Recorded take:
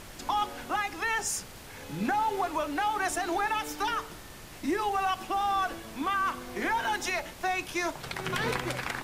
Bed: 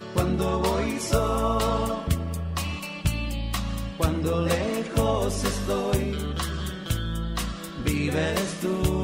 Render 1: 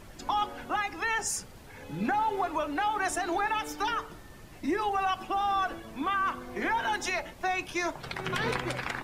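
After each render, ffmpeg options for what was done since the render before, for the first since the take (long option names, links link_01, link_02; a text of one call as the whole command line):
ffmpeg -i in.wav -af "afftdn=noise_reduction=9:noise_floor=-46" out.wav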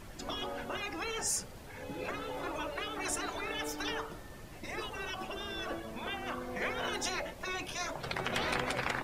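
ffmpeg -i in.wav -af "afftfilt=real='re*lt(hypot(re,im),0.112)':imag='im*lt(hypot(re,im),0.112)':win_size=1024:overlap=0.75,adynamicequalizer=threshold=0.00178:dfrequency=560:dqfactor=2.3:tfrequency=560:tqfactor=2.3:attack=5:release=100:ratio=0.375:range=2.5:mode=boostabove:tftype=bell" out.wav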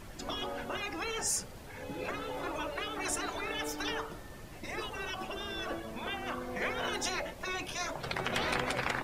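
ffmpeg -i in.wav -af "volume=1dB" out.wav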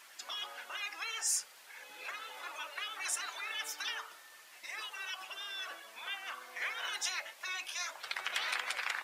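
ffmpeg -i in.wav -af "highpass=1400" out.wav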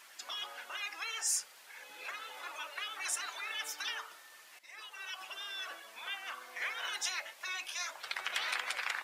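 ffmpeg -i in.wav -filter_complex "[0:a]asplit=2[link_01][link_02];[link_01]atrim=end=4.59,asetpts=PTS-STARTPTS,afade=type=out:start_time=4.586:duration=0.004:curve=hsin:silence=0.223872[link_03];[link_02]atrim=start=4.59,asetpts=PTS-STARTPTS,afade=type=in:duration=0.68:silence=0.223872[link_04];[link_03][link_04]concat=n=2:v=0:a=1" out.wav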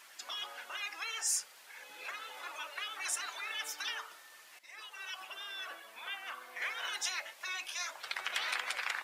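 ffmpeg -i in.wav -filter_complex "[0:a]asettb=1/sr,asplit=3[link_01][link_02][link_03];[link_01]atrim=end=5.204[link_04];[link_02]atrim=start=5.2:end=6.62,asetpts=PTS-STARTPTS,afade=type=in:duration=0.004:curve=qsin,afade=type=out:start_time=1.416:duration=0.004:curve=qsin,equalizer=frequency=5900:width=1:gain=-4.5[link_05];[link_03]atrim=start=6.616[link_06];[link_04][link_05]acrossfade=duration=0.004:curve1=hsin:curve2=qsin[link_07];[link_07][link_06]acrossfade=duration=0.004:curve1=qsin:curve2=hsin" out.wav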